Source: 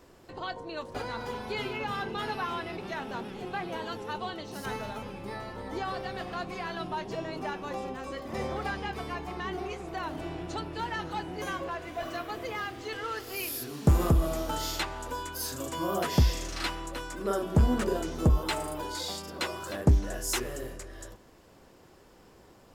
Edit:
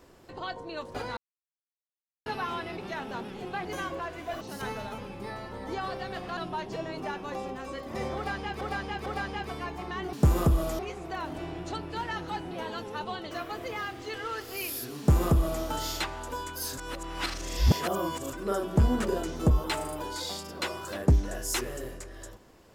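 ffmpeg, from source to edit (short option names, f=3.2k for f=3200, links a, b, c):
-filter_complex "[0:a]asplit=14[a][b][c][d][e][f][g][h][i][j][k][l][m][n];[a]atrim=end=1.17,asetpts=PTS-STARTPTS,afade=t=out:st=1.166:d=0.004:c=hsin[o];[b]atrim=start=1.17:end=2.26,asetpts=PTS-STARTPTS,volume=0[p];[c]atrim=start=2.26:end=3.652,asetpts=PTS-STARTPTS,afade=t=in:d=0.004:c=hsin[q];[d]atrim=start=11.338:end=12.102[r];[e]atrim=start=4.448:end=6.412[s];[f]atrim=start=6.758:end=9.002[t];[g]atrim=start=8.548:end=9.002[u];[h]atrim=start=8.548:end=9.622[v];[i]atrim=start=13.768:end=14.432[w];[j]atrim=start=9.618:end=11.342[x];[k]atrim=start=3.648:end=4.452[y];[l]atrim=start=12.098:end=15.572[z];[m]atrim=start=15.568:end=17.122,asetpts=PTS-STARTPTS,areverse[aa];[n]atrim=start=17.118[ab];[o][p][q]concat=n=3:v=0:a=1[ac];[ac][r]acrossfade=d=0.004:c1=hsin:c2=hsin[ad];[ad][s]acrossfade=d=0.004:c1=hsin:c2=hsin[ae];[ae][t]acrossfade=d=0.004:c1=hsin:c2=hsin[af];[af][u]acrossfade=d=0.004:c1=hsin:c2=hsin[ag];[ag][v]acrossfade=d=0.004:c1=hsin:c2=hsin[ah];[ah][w]acrossfade=d=0.004:c1=hsin:c2=hsin[ai];[ai][x]acrossfade=d=0.004:c1=hsin:c2=hsin[aj];[aj][y]acrossfade=d=0.004:c1=hsin:c2=hsin[ak];[ak][z]acrossfade=d=0.004:c1=hsin:c2=hsin[al];[al][aa]acrossfade=d=0.004:c1=hsin:c2=hsin[am];[am][ab]acrossfade=d=0.004:c1=hsin:c2=hsin"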